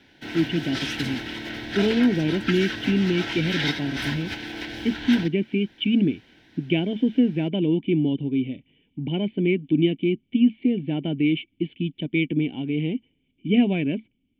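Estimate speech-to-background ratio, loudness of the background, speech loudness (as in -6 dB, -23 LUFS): 5.5 dB, -30.0 LUFS, -24.5 LUFS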